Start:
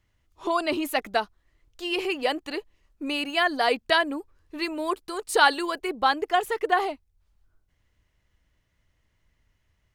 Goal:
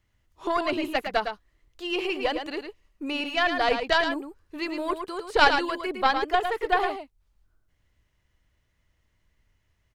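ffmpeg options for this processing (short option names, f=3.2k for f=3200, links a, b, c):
-filter_complex "[0:a]acrossover=split=4500[a][b];[b]acompressor=threshold=-52dB:ratio=4:attack=1:release=60[c];[a][c]amix=inputs=2:normalize=0,aeval=exprs='0.501*(cos(1*acos(clip(val(0)/0.501,-1,1)))-cos(1*PI/2))+0.224*(cos(2*acos(clip(val(0)/0.501,-1,1)))-cos(2*PI/2))':c=same,aecho=1:1:109:0.447,volume=-1dB"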